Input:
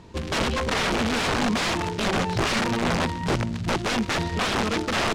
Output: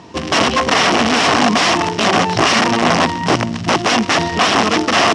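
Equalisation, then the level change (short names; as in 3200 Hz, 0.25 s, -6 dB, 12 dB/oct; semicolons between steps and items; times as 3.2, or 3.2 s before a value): speaker cabinet 120–9900 Hz, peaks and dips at 290 Hz +6 dB, 710 Hz +8 dB, 1100 Hz +7 dB, 1900 Hz +4 dB, 2900 Hz +6 dB, 5500 Hz +9 dB; +7.0 dB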